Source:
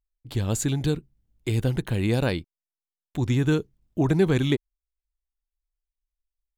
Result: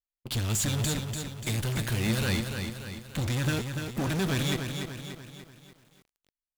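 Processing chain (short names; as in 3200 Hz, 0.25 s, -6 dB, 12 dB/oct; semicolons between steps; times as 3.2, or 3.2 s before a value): passive tone stack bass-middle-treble 5-5-5; in parallel at -10 dB: fuzz box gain 58 dB, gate -55 dBFS; on the sum: bell 220 Hz +7.5 dB 0.2 oct; flange 0.61 Hz, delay 5.6 ms, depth 5.9 ms, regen +86%; lo-fi delay 0.292 s, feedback 55%, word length 9-bit, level -6 dB; gain -1 dB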